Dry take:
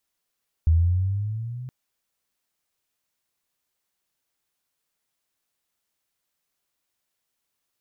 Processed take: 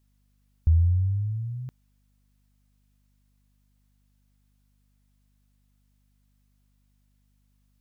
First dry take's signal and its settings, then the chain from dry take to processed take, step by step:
gliding synth tone sine, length 1.02 s, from 79.1 Hz, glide +8.5 st, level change -19 dB, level -13.5 dB
hum 50 Hz, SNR 35 dB

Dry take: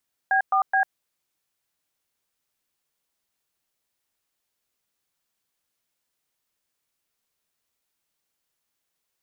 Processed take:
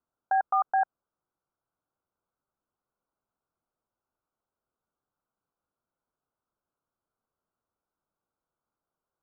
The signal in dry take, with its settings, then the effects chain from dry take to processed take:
DTMF "B4B", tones 98 ms, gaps 0.114 s, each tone -20 dBFS
block floating point 7-bit; steep low-pass 1500 Hz 96 dB/oct; limiter -17 dBFS

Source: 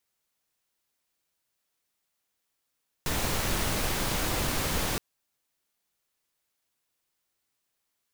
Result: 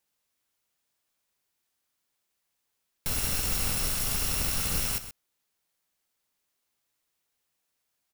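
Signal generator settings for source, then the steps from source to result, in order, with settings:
noise pink, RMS -28.5 dBFS 1.92 s
FFT order left unsorted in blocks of 128 samples; echo 0.128 s -12 dB

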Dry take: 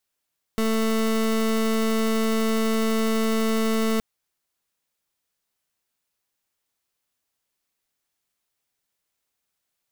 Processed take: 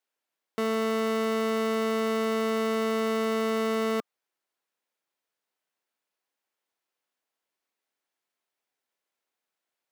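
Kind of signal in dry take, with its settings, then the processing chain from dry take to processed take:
pulse 222 Hz, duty 27% -22 dBFS 3.42 s
HPF 310 Hz 12 dB/oct; high shelf 3600 Hz -11.5 dB; notch 1200 Hz, Q 26

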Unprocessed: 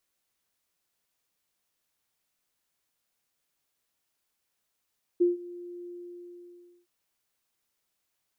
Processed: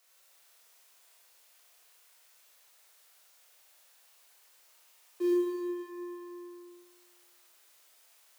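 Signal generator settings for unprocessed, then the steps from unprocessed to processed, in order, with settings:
ADSR sine 351 Hz, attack 16 ms, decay 0.151 s, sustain -21 dB, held 0.67 s, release 0.996 s -17.5 dBFS
G.711 law mismatch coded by mu; HPF 460 Hz 24 dB/oct; Schroeder reverb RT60 1.9 s, combs from 25 ms, DRR -5.5 dB

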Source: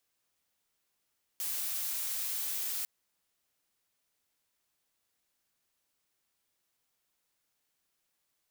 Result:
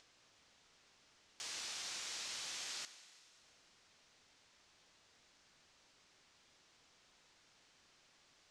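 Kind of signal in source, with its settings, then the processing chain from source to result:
noise blue, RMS -35 dBFS 1.45 s
LPF 6400 Hz 24 dB/oct; upward compressor, threshold -56 dBFS; Schroeder reverb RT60 2.4 s, combs from 31 ms, DRR 12 dB

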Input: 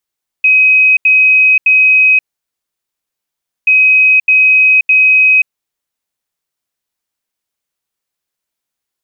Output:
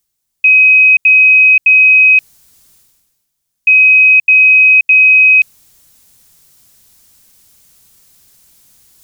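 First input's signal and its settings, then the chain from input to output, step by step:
beep pattern sine 2530 Hz, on 0.53 s, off 0.08 s, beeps 3, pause 1.48 s, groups 2, -4.5 dBFS
tone controls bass +13 dB, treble +10 dB; reverse; upward compressor, threshold -29 dBFS; reverse

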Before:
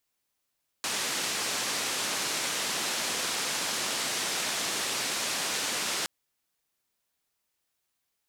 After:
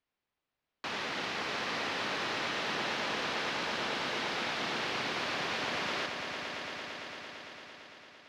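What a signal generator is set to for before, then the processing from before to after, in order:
noise band 170–7500 Hz, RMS -31 dBFS 5.22 s
air absorption 270 m; on a send: swelling echo 0.113 s, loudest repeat 5, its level -11.5 dB

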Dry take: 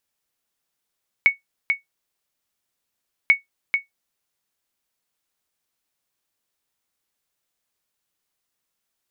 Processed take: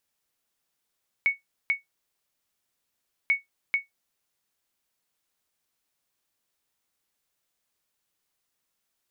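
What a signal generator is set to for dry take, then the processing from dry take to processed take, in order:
sonar ping 2220 Hz, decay 0.14 s, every 2.04 s, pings 2, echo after 0.44 s, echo -6 dB -5.5 dBFS
limiter -16.5 dBFS

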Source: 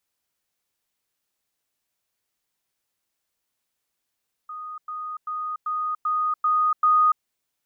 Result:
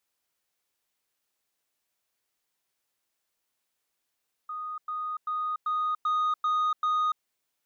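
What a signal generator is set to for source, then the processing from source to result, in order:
level ladder 1240 Hz -32.5 dBFS, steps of 3 dB, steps 7, 0.29 s 0.10 s
tone controls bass -5 dB, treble -1 dB; limiter -20 dBFS; soft clip -22.5 dBFS

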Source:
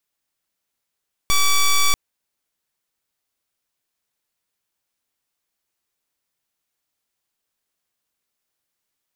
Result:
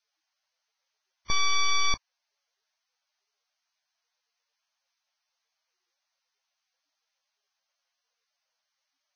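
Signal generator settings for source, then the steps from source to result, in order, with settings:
pulse 1150 Hz, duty 9% -15 dBFS 0.64 s
limiter -21 dBFS; Vorbis 16 kbps 16000 Hz

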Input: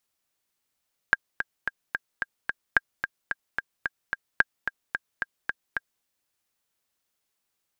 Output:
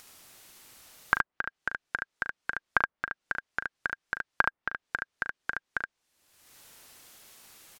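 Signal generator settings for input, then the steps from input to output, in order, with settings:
metronome 220 bpm, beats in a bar 6, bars 3, 1610 Hz, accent 9 dB -4.5 dBFS
treble ducked by the level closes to 1400 Hz, closed at -29.5 dBFS; upward compressor, threshold -35 dBFS; on a send: early reflections 39 ms -10 dB, 72 ms -4 dB

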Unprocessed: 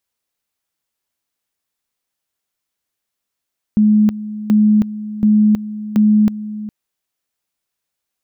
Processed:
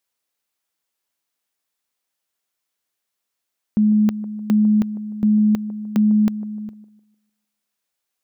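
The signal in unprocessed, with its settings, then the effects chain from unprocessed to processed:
two-level tone 212 Hz -8 dBFS, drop 15 dB, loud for 0.32 s, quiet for 0.41 s, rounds 4
low shelf 180 Hz -9 dB; band-limited delay 0.151 s, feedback 34%, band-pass 450 Hz, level -13.5 dB

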